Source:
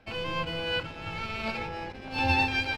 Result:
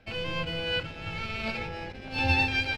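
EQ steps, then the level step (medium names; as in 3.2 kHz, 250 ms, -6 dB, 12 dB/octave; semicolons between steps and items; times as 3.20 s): peaking EQ 310 Hz -3.5 dB 1.1 oct; peaking EQ 1 kHz -7.5 dB 0.91 oct; treble shelf 6.1 kHz -4.5 dB; +2.5 dB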